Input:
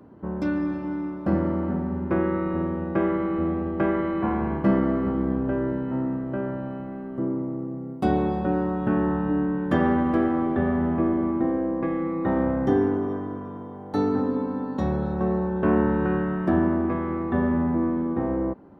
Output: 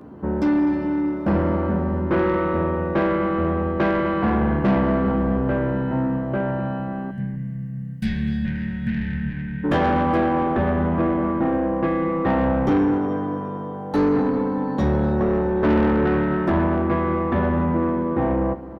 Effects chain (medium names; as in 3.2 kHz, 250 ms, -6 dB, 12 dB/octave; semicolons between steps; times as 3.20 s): doubling 14 ms -5 dB; saturation -21.5 dBFS, distortion -11 dB; time-frequency box 7.11–9.64 s, 250–1500 Hz -26 dB; echo from a far wall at 43 m, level -16 dB; trim +7 dB